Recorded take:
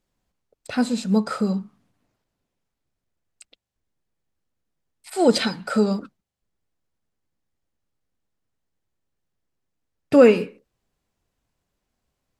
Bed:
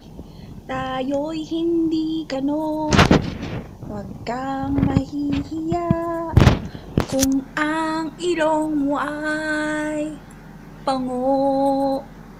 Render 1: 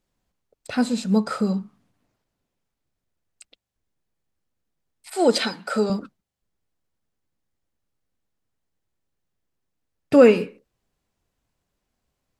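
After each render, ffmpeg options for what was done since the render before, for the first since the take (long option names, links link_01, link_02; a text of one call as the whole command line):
ffmpeg -i in.wav -filter_complex "[0:a]asettb=1/sr,asplit=3[link_01][link_02][link_03];[link_01]atrim=end=5.134[link_04];[link_02]atrim=start=5.13:end=5.9,asetpts=PTS-STARTPTS,afade=type=in:duration=0.004:curve=qsin,afade=type=out:start_time=0.766:duration=0.004:curve=qsin,highpass=260[link_05];[link_03]atrim=start=5.896[link_06];[link_04][link_05]acrossfade=duration=0.004:curve1=hsin:curve2=qsin[link_07];[link_07][link_06]acrossfade=duration=0.004:curve1=qsin:curve2=hsin" out.wav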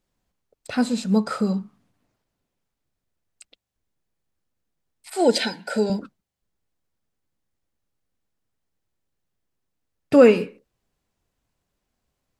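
ffmpeg -i in.wav -filter_complex "[0:a]asettb=1/sr,asplit=3[link_01][link_02][link_03];[link_01]atrim=end=5.214[link_04];[link_02]atrim=start=5.21:end=6.02,asetpts=PTS-STARTPTS,afade=type=in:duration=0.004:curve=qsin,afade=type=out:start_time=0.806:duration=0.004:curve=qsin,asuperstop=centerf=1200:order=8:qfactor=3.5[link_05];[link_03]atrim=start=6.016[link_06];[link_04][link_05]acrossfade=duration=0.004:curve1=hsin:curve2=qsin[link_07];[link_07][link_06]acrossfade=duration=0.004:curve1=qsin:curve2=hsin" out.wav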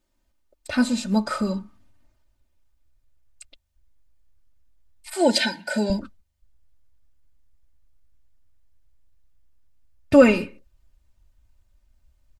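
ffmpeg -i in.wav -af "asubboost=boost=9:cutoff=100,aecho=1:1:3.3:0.79" out.wav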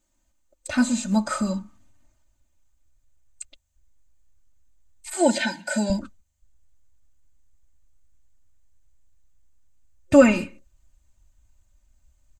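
ffmpeg -i in.wav -filter_complex "[0:a]acrossover=split=2800[link_01][link_02];[link_02]acompressor=threshold=-35dB:ratio=4:attack=1:release=60[link_03];[link_01][link_03]amix=inputs=2:normalize=0,superequalizer=7b=0.316:15b=3.16" out.wav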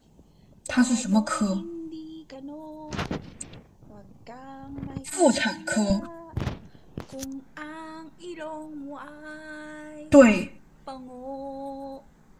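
ffmpeg -i in.wav -i bed.wav -filter_complex "[1:a]volume=-17.5dB[link_01];[0:a][link_01]amix=inputs=2:normalize=0" out.wav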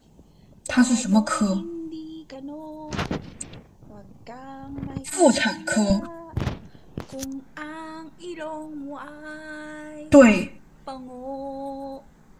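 ffmpeg -i in.wav -af "volume=3dB,alimiter=limit=-1dB:level=0:latency=1" out.wav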